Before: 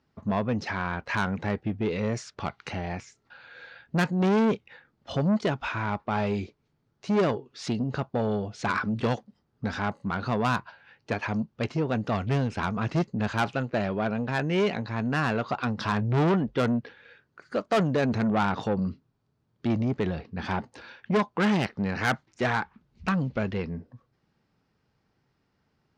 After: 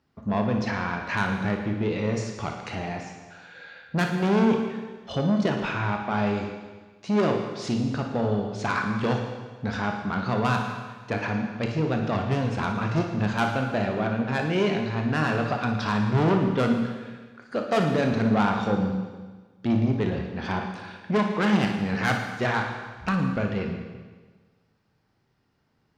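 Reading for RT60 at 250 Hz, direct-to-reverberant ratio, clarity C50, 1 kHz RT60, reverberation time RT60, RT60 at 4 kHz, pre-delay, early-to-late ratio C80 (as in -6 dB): 1.4 s, 2.5 dB, 3.5 dB, 1.4 s, 1.4 s, 1.4 s, 26 ms, 6.5 dB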